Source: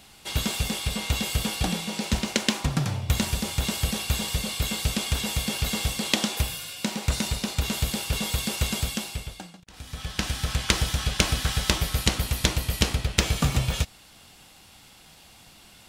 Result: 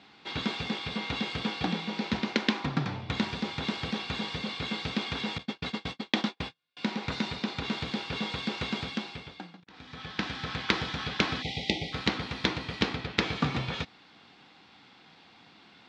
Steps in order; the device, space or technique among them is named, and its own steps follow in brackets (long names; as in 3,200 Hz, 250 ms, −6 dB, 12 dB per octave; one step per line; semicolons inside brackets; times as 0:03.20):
0:05.38–0:06.77: noise gate −26 dBFS, range −42 dB
0:11.42–0:11.93: time-frequency box erased 870–1,900 Hz
kitchen radio (loudspeaker in its box 190–3,900 Hz, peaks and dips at 280 Hz +3 dB, 600 Hz −7 dB, 2,900 Hz −6 dB)